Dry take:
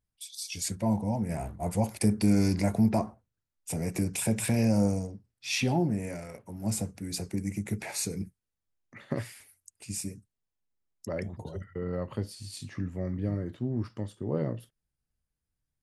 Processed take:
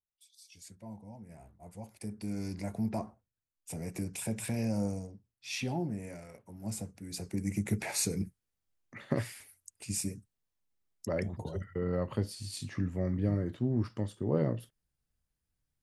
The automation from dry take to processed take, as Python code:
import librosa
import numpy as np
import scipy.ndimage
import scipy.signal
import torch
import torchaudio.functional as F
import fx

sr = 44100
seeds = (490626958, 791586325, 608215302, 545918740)

y = fx.gain(x, sr, db=fx.line((1.71, -19.0), (3.05, -7.5), (7.05, -7.5), (7.59, 1.0)))